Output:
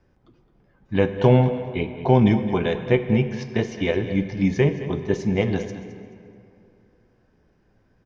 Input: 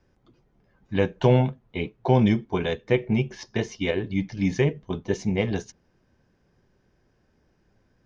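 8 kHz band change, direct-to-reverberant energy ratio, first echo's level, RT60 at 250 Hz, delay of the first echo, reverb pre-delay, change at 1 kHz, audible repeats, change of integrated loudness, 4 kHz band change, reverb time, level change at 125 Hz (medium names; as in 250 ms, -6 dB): no reading, 8.5 dB, -14.0 dB, 2.6 s, 215 ms, 20 ms, +3.0 dB, 2, +3.5 dB, +0.5 dB, 2.7 s, +3.5 dB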